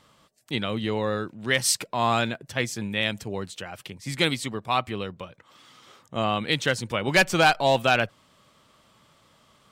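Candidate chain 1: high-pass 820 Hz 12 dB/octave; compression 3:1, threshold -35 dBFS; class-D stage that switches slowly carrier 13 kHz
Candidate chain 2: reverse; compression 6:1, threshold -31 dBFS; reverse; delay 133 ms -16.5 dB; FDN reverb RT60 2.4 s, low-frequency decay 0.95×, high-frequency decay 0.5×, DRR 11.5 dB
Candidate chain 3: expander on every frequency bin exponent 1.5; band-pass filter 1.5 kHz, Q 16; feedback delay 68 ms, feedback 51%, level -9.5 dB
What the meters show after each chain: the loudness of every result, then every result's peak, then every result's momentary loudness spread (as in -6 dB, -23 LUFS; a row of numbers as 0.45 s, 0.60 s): -36.5 LUFS, -35.5 LUFS, -37.5 LUFS; -18.0 dBFS, -18.0 dBFS, -18.5 dBFS; 6 LU, 15 LU, 25 LU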